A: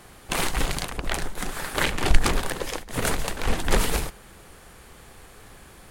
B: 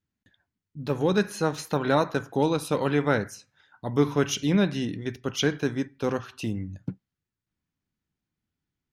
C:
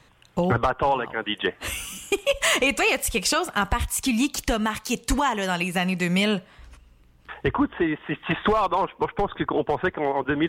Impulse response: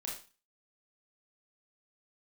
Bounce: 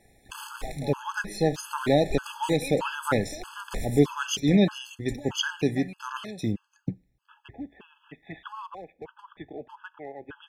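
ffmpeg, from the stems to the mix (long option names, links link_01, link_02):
-filter_complex "[0:a]volume=-13.5dB,asplit=2[link_01][link_02];[link_02]volume=-5dB[link_03];[1:a]volume=2dB,asplit=3[link_04][link_05][link_06];[link_05]volume=-23.5dB[link_07];[2:a]volume=-15.5dB,asplit=2[link_08][link_09];[link_09]volume=-19.5dB[link_10];[link_06]apad=whole_len=260434[link_11];[link_01][link_11]sidechaincompress=threshold=-38dB:ratio=8:attack=43:release=110[link_12];[3:a]atrim=start_sample=2205[link_13];[link_03][link_07][link_10]amix=inputs=3:normalize=0[link_14];[link_14][link_13]afir=irnorm=-1:irlink=0[link_15];[link_12][link_04][link_08][link_15]amix=inputs=4:normalize=0,afftfilt=real='re*gt(sin(2*PI*1.6*pts/sr)*(1-2*mod(floor(b*sr/1024/860),2)),0)':imag='im*gt(sin(2*PI*1.6*pts/sr)*(1-2*mod(floor(b*sr/1024/860),2)),0)':win_size=1024:overlap=0.75"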